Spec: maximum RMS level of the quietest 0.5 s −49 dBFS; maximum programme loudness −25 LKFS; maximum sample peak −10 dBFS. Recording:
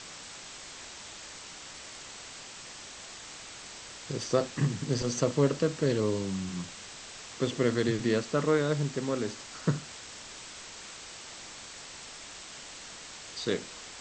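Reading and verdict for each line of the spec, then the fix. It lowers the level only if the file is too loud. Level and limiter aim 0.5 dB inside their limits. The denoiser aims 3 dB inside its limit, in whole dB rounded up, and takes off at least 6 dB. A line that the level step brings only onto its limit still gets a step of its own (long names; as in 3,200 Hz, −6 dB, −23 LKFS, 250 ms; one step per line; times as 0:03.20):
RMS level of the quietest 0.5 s −46 dBFS: out of spec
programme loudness −33.5 LKFS: in spec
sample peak −12.0 dBFS: in spec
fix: broadband denoise 6 dB, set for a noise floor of −46 dBFS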